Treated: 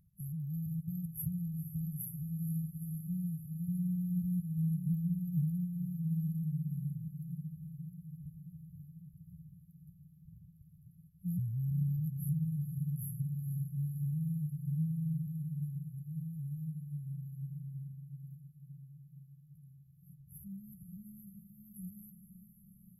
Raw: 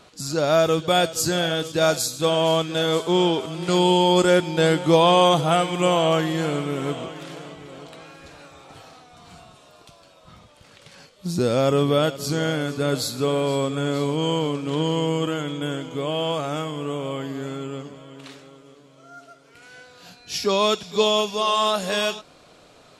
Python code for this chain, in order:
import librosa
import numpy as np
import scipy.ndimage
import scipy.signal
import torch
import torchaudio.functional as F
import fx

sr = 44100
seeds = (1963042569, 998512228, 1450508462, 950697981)

y = fx.brickwall_bandstop(x, sr, low_hz=190.0, high_hz=11000.0)
y = fx.echo_diffused(y, sr, ms=482, feedback_pct=74, wet_db=-10.5)
y = y * 10.0 ** (-5.5 / 20.0)